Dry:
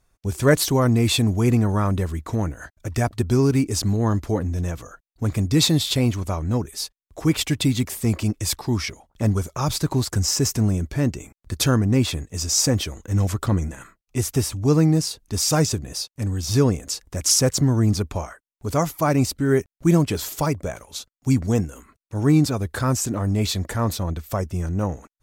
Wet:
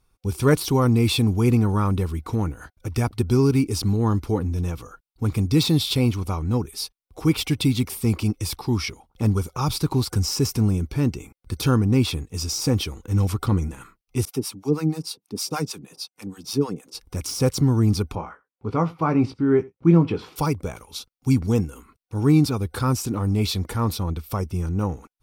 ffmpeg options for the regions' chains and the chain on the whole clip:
-filter_complex "[0:a]asettb=1/sr,asplit=3[a][b][c];[a]atrim=end=14.254[d];[b]atrim=start=14.25:end=16.95,asetpts=PTS-STARTPTS,afade=t=in:d=0.004:c=qsin,afade=t=out:st=2.696:d=0.004:c=qsin,highpass=f=160:w=0.5412,highpass=f=160:w=1.3066,acrossover=split=640[e][f];[e]aeval=exprs='val(0)*(1-1/2+1/2*cos(2*PI*6.4*n/s))':c=same[g];[f]aeval=exprs='val(0)*(1-1/2-1/2*cos(2*PI*6.4*n/s))':c=same[h];[g][h]amix=inputs=2:normalize=0[i];[c]atrim=start=16.946[j];[d][i]acrossfade=d=0.004:c1=hsin:c2=qsin[k];[k][j]acrossfade=d=0.004:c1=qsin:c2=hsin,asettb=1/sr,asplit=3[l][m][n];[l]atrim=end=18.154[o];[m]atrim=start=18.15:end=20.36,asetpts=PTS-STARTPTS,afade=t=in:d=0.004:c=qsin,afade=t=out:st=2.206:d=0.004:c=qsin,highpass=110,lowpass=2.1k,asplit=2[p][q];[q]adelay=18,volume=-8dB[r];[p][r]amix=inputs=2:normalize=0,atrim=end_sample=97461,aecho=1:1:84:0.075,atrim=end_sample=97461[s];[n]atrim=start=20.356[t];[o][s]acrossfade=d=0.004:c1=hsin:c2=qsin[u];[u][t]acrossfade=d=0.004:c1=qsin:c2=hsin,deesser=0.4,superequalizer=8b=0.398:11b=0.447:15b=0.447"

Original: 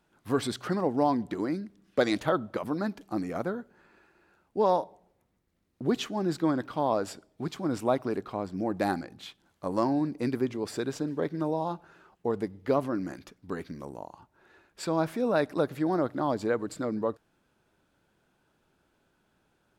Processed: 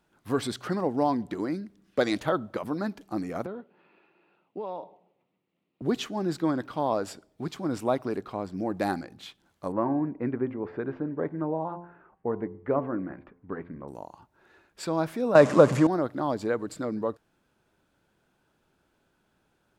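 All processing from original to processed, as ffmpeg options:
-filter_complex "[0:a]asettb=1/sr,asplit=3[a][b][c];[a]atrim=end=3.464[d];[b]atrim=start=3.46:end=5.82,asetpts=PTS-STARTPTS,afade=t=in:d=0.004:c=qsin,afade=t=out:st=2.356:d=0.004:c=qsin,acompressor=threshold=-31dB:ratio=6:attack=3.2:release=140:knee=1:detection=peak,highpass=f=150:w=0.5412,highpass=f=150:w=1.3066,equalizer=f=230:t=q:w=4:g=-4,equalizer=f=1.6k:t=q:w=4:g=-10,equalizer=f=2.7k:t=q:w=4:g=6,lowpass=f=3.6k:w=0.5412,lowpass=f=3.6k:w=1.3066[e];[c]atrim=start=5.816[f];[d][e]acrossfade=d=0.004:c1=hsin:c2=qsin[g];[g][f]acrossfade=d=0.004:c1=qsin:c2=hsin,asettb=1/sr,asplit=3[h][i][j];[h]atrim=end=9.724[k];[i]atrim=start=9.72:end=13.88,asetpts=PTS-STARTPTS,afade=t=in:d=0.004:c=qsin,afade=t=out:st=4.156:d=0.004:c=qsin,lowpass=f=2k:w=0.5412,lowpass=f=2k:w=1.3066,bandreject=f=86.74:t=h:w=4,bandreject=f=173.48:t=h:w=4,bandreject=f=260.22:t=h:w=4,bandreject=f=346.96:t=h:w=4,bandreject=f=433.7:t=h:w=4,bandreject=f=520.44:t=h:w=4,bandreject=f=607.18:t=h:w=4,bandreject=f=693.92:t=h:w=4,bandreject=f=780.66:t=h:w=4,bandreject=f=867.4:t=h:w=4,bandreject=f=954.14:t=h:w=4,bandreject=f=1.04088k:t=h:w=4,bandreject=f=1.12762k:t=h:w=4[l];[j]atrim=start=13.876[m];[k][l]acrossfade=d=0.004:c1=hsin:c2=qsin[n];[n][m]acrossfade=d=0.004:c1=qsin:c2=hsin,asettb=1/sr,asplit=3[o][p][q];[o]atrim=end=15.354[r];[p]atrim=start=15.35:end=15.87,asetpts=PTS-STARTPTS,afade=t=in:d=0.004:c=qsin,afade=t=out:st=0.516:d=0.004:c=qsin,aeval=exprs='val(0)+0.5*0.0158*sgn(val(0))':c=same,acontrast=31,highpass=110,equalizer=f=130:t=q:w=4:g=8,equalizer=f=210:t=q:w=4:g=9,equalizer=f=550:t=q:w=4:g=8,equalizer=f=1.1k:t=q:w=4:g=9,equalizer=f=3.9k:t=q:w=4:g=-5,equalizer=f=7.1k:t=q:w=4:g=5,lowpass=f=9.2k:w=0.5412,lowpass=f=9.2k:w=1.3066[s];[q]atrim=start=15.866[t];[r][s]acrossfade=d=0.004:c1=hsin:c2=qsin[u];[u][t]acrossfade=d=0.004:c1=qsin:c2=hsin"

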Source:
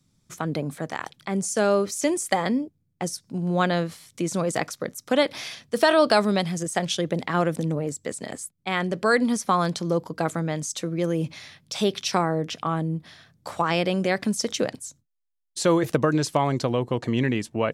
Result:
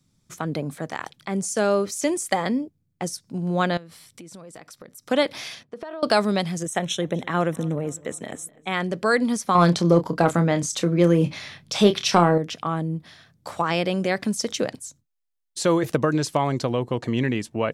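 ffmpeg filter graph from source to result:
-filter_complex "[0:a]asettb=1/sr,asplit=3[a][b][c];[a]atrim=end=3.774[d];[b]atrim=start=3.77:end=5.03,asetpts=PTS-STARTPTS,afade=t=in:d=0.004:c=qsin,afade=t=out:st=1.256:d=0.004:c=qsin,bandreject=f=6.6k:w=9.2,acompressor=threshold=-40dB:ratio=6:attack=3.2:release=140:knee=1:detection=peak[e];[c]atrim=start=5.026[f];[d][e]acrossfade=d=0.004:c1=hsin:c2=qsin[g];[g][f]acrossfade=d=0.004:c1=qsin:c2=hsin,asettb=1/sr,asplit=3[h][i][j];[h]atrim=end=5.634[k];[i]atrim=start=5.63:end=6.03,asetpts=PTS-STARTPTS,afade=t=in:d=0.004:c=qsin,afade=t=out:st=0.396:d=0.004:c=qsin,bandpass=f=500:t=q:w=0.56,acompressor=threshold=-31dB:ratio=12:attack=3.2:release=140:knee=1:detection=peak[l];[j]atrim=start=6.026[m];[k][l]acrossfade=d=0.004:c1=hsin:c2=qsin[n];[n][m]acrossfade=d=0.004:c1=qsin:c2=hsin,asettb=1/sr,asplit=3[o][p][q];[o]atrim=end=6.654[r];[p]atrim=start=6.65:end=8.74,asetpts=PTS-STARTPTS,afade=t=in:d=0.004:c=qsin,afade=t=out:st=2.086:d=0.004:c=qsin,asuperstop=centerf=4700:order=8:qfactor=3.9,asplit=2[s][t];[t]adelay=251,lowpass=f=4.5k:p=1,volume=-23dB,asplit=2[u][v];[v]adelay=251,lowpass=f=4.5k:p=1,volume=0.55,asplit=2[w][x];[x]adelay=251,lowpass=f=4.5k:p=1,volume=0.55,asplit=2[y][z];[z]adelay=251,lowpass=f=4.5k:p=1,volume=0.55[aa];[s][u][w][y][aa]amix=inputs=5:normalize=0,atrim=end_sample=92169[ab];[q]atrim=start=8.736[ac];[r][ab]acrossfade=d=0.004:c1=hsin:c2=qsin[ad];[ad][ac]acrossfade=d=0.004:c1=qsin:c2=hsin,asettb=1/sr,asplit=3[ae][af][ag];[ae]atrim=end=9.554[ah];[af]atrim=start=9.55:end=12.38,asetpts=PTS-STARTPTS,afade=t=in:d=0.004:c=qsin,afade=t=out:st=2.826:d=0.004:c=qsin,highshelf=f=5.1k:g=-7,acontrast=82,asplit=2[ai][aj];[aj]adelay=29,volume=-10dB[ak];[ai][ak]amix=inputs=2:normalize=0,atrim=end_sample=124803[al];[ag]atrim=start=12.376[am];[ah][al]acrossfade=d=0.004:c1=hsin:c2=qsin[an];[an][am]acrossfade=d=0.004:c1=qsin:c2=hsin"

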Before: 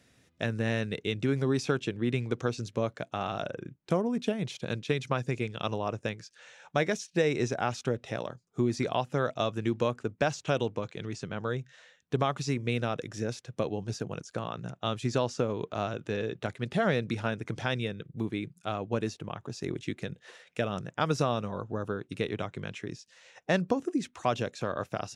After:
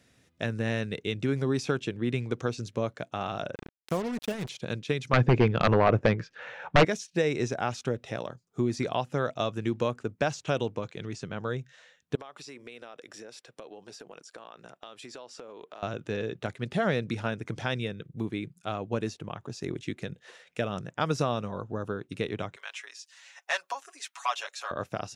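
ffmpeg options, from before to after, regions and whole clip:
-filter_complex "[0:a]asettb=1/sr,asplit=3[a][b][c];[a]atrim=end=3.554[d];[b]atrim=start=3.55:end=4.49,asetpts=PTS-STARTPTS,afade=t=in:d=0.004:c=qsin,afade=t=out:st=0.936:d=0.004:c=qsin,equalizer=f=270:w=0.52:g=-3.5,acrusher=bits=5:mix=0:aa=0.5[e];[c]atrim=start=4.486[f];[d][e]acrossfade=d=0.004:c1=hsin:c2=qsin[g];[g][f]acrossfade=d=0.004:c1=qsin:c2=hsin,asettb=1/sr,asplit=3[h][i][j];[h]atrim=end=5.134[k];[i]atrim=start=5.13:end=6.85,asetpts=PTS-STARTPTS,afade=t=in:d=0.004:c=qsin,afade=t=out:st=1.716:d=0.004:c=qsin,lowpass=1.9k,aeval=exprs='0.211*sin(PI/2*3.16*val(0)/0.211)':c=same[l];[j]atrim=start=6.846[m];[k][l]acrossfade=d=0.004:c1=hsin:c2=qsin[n];[n][m]acrossfade=d=0.004:c1=qsin:c2=hsin,asettb=1/sr,asplit=3[o][p][q];[o]atrim=end=12.154[r];[p]atrim=start=12.15:end=15.83,asetpts=PTS-STARTPTS,afade=t=in:d=0.004:c=qsin,afade=t=out:st=3.676:d=0.004:c=qsin,highpass=410,acompressor=threshold=-41dB:ratio=6:attack=3.2:release=140:knee=1:detection=peak,bandreject=f=6.4k:w=8.3[s];[q]atrim=start=15.826[t];[r][s]acrossfade=d=0.004:c1=hsin:c2=qsin[u];[u][t]acrossfade=d=0.004:c1=qsin:c2=hsin,asettb=1/sr,asplit=3[v][w][x];[v]atrim=end=22.564[y];[w]atrim=start=22.56:end=24.71,asetpts=PTS-STARTPTS,afade=t=in:d=0.004:c=qsin,afade=t=out:st=2.146:d=0.004:c=qsin,highpass=f=830:w=0.5412,highpass=f=830:w=1.3066,highshelf=f=7.7k:g=5.5,aecho=1:1:7.2:0.99,atrim=end_sample=94815[z];[x]atrim=start=24.706[aa];[y][z]acrossfade=d=0.004:c1=hsin:c2=qsin[ab];[ab][aa]acrossfade=d=0.004:c1=qsin:c2=hsin"

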